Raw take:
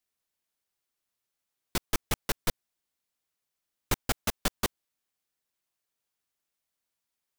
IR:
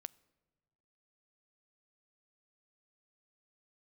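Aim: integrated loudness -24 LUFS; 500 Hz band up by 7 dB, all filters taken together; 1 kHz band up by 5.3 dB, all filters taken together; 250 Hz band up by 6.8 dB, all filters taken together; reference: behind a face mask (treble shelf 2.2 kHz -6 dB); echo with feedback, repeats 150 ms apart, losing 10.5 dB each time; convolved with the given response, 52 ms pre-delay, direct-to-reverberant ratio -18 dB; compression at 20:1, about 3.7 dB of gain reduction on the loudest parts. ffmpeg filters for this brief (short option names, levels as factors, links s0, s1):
-filter_complex "[0:a]equalizer=f=250:t=o:g=7,equalizer=f=500:t=o:g=5.5,equalizer=f=1000:t=o:g=6,acompressor=threshold=0.0708:ratio=20,aecho=1:1:150|300|450:0.299|0.0896|0.0269,asplit=2[s0][s1];[1:a]atrim=start_sample=2205,adelay=52[s2];[s1][s2]afir=irnorm=-1:irlink=0,volume=14.1[s3];[s0][s3]amix=inputs=2:normalize=0,highshelf=f=2200:g=-6,volume=0.422"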